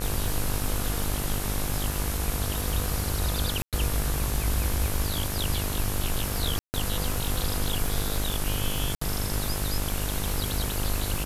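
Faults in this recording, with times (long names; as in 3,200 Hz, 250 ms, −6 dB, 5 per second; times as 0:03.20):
mains buzz 50 Hz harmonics 35 −32 dBFS
surface crackle 180 per second −33 dBFS
0:03.62–0:03.73: drop-out 107 ms
0:06.59–0:06.74: drop-out 149 ms
0:08.95–0:09.01: drop-out 64 ms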